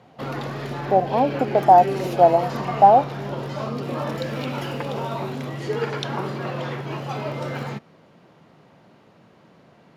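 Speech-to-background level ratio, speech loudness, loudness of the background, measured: 11.5 dB, −17.5 LKFS, −29.0 LKFS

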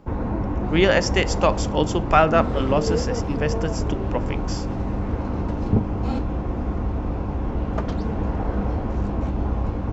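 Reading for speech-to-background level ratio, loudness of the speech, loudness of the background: 3.5 dB, −22.5 LKFS, −26.0 LKFS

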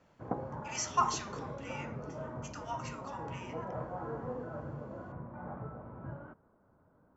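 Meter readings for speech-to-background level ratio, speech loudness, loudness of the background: 5.5 dB, −37.5 LKFS, −43.0 LKFS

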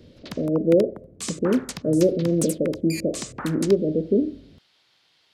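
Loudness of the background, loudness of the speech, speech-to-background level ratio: −35.5 LKFS, −23.0 LKFS, 12.5 dB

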